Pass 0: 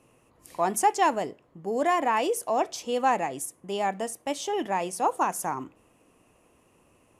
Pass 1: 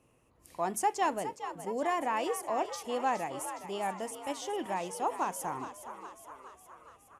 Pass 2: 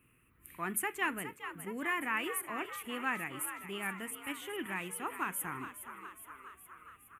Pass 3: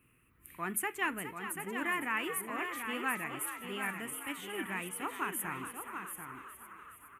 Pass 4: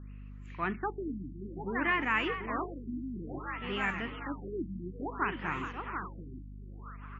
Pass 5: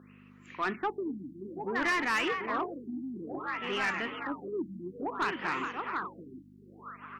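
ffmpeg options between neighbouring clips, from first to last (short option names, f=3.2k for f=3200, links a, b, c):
-filter_complex "[0:a]equalizer=f=61:t=o:w=1.5:g=7,asplit=8[a][b][c][d][e][f][g][h];[b]adelay=415,afreqshift=65,volume=-11dB[i];[c]adelay=830,afreqshift=130,volume=-15.4dB[j];[d]adelay=1245,afreqshift=195,volume=-19.9dB[k];[e]adelay=1660,afreqshift=260,volume=-24.3dB[l];[f]adelay=2075,afreqshift=325,volume=-28.7dB[m];[g]adelay=2490,afreqshift=390,volume=-33.2dB[n];[h]adelay=2905,afreqshift=455,volume=-37.6dB[o];[a][i][j][k][l][m][n][o]amix=inputs=8:normalize=0,volume=-7dB"
-af "firequalizer=gain_entry='entry(200,0);entry(380,-4);entry(560,-16);entry(820,-14);entry(1300,5);entry(2400,7);entry(5200,-22);entry(8600,-1);entry(14000,13)':delay=0.05:min_phase=1"
-af "aecho=1:1:738:0.447"
-af "aeval=exprs='val(0)+0.00355*(sin(2*PI*50*n/s)+sin(2*PI*2*50*n/s)/2+sin(2*PI*3*50*n/s)/3+sin(2*PI*4*50*n/s)/4+sin(2*PI*5*50*n/s)/5)':c=same,afftfilt=real='re*lt(b*sr/1024,330*pow(7600/330,0.5+0.5*sin(2*PI*0.58*pts/sr)))':imag='im*lt(b*sr/1024,330*pow(7600/330,0.5+0.5*sin(2*PI*0.58*pts/sr)))':win_size=1024:overlap=0.75,volume=4.5dB"
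-af "highpass=280,asoftclip=type=tanh:threshold=-28.5dB,volume=5dB"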